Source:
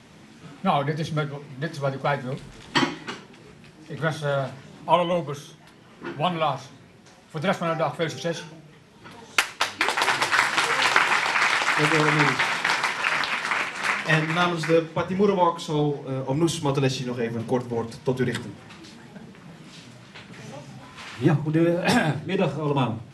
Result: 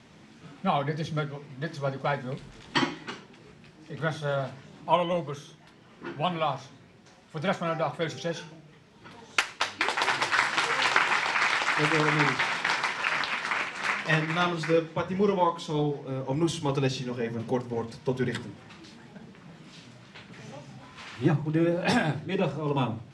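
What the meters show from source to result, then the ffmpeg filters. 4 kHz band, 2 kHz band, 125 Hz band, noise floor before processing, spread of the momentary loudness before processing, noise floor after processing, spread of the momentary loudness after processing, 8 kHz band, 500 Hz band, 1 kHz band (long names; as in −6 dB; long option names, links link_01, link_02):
−4.0 dB, −4.0 dB, −4.0 dB, −50 dBFS, 18 LU, −54 dBFS, 17 LU, −6.0 dB, −4.0 dB, −4.0 dB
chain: -af "lowpass=7900,volume=-4dB"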